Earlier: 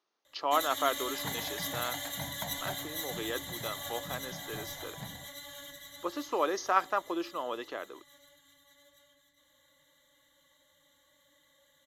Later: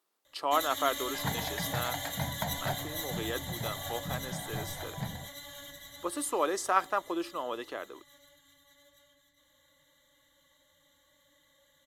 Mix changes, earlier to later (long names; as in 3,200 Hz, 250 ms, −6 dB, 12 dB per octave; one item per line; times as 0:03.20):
speech: remove linear-phase brick-wall low-pass 6,700 Hz
second sound +5.5 dB
master: add low-shelf EQ 110 Hz +6.5 dB